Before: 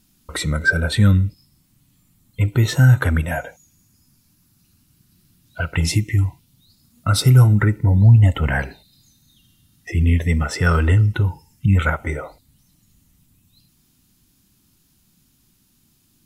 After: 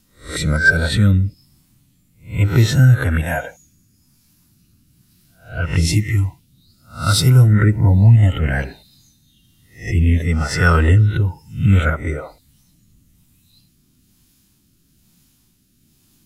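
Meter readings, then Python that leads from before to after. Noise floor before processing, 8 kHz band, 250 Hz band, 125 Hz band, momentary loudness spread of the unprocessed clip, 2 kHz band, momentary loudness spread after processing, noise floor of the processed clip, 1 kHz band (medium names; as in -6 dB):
-61 dBFS, +3.0 dB, +2.0 dB, +1.5 dB, 14 LU, +3.5 dB, 14 LU, -59 dBFS, +2.0 dB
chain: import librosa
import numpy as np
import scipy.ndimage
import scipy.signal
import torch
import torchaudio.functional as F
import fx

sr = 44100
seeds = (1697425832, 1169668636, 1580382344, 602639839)

y = fx.spec_swells(x, sr, rise_s=0.36)
y = fx.rotary(y, sr, hz=1.1)
y = F.gain(torch.from_numpy(y), 3.0).numpy()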